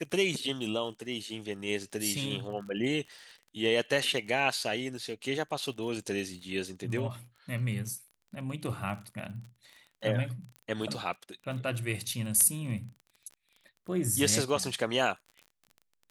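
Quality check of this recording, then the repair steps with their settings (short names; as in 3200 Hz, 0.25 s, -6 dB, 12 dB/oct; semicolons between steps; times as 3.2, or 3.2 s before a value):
crackle 30/s -41 dBFS
10.56 pop -31 dBFS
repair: de-click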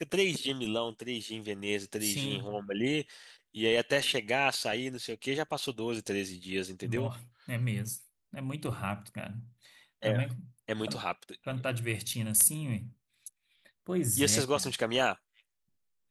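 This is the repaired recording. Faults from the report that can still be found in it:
none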